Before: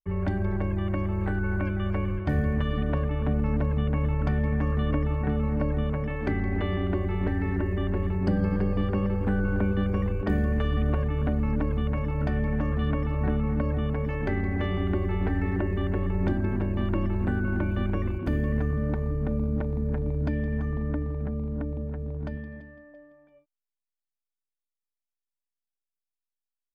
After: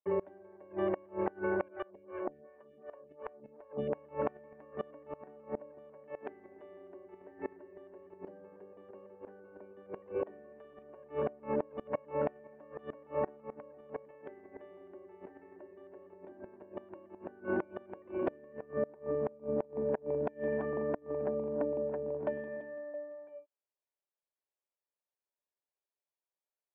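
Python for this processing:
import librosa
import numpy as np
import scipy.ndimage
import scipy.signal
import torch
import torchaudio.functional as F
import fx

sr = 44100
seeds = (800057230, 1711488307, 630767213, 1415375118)

y = fx.cabinet(x, sr, low_hz=390.0, low_slope=12, high_hz=2400.0, hz=(390.0, 580.0, 930.0, 1400.0, 2100.0), db=(8, 9, 4, -6, -5))
y = fx.gate_flip(y, sr, shuts_db=-23.0, range_db=-26)
y = fx.stagger_phaser(y, sr, hz=2.7, at=(1.68, 3.93))
y = F.gain(torch.from_numpy(y), 1.5).numpy()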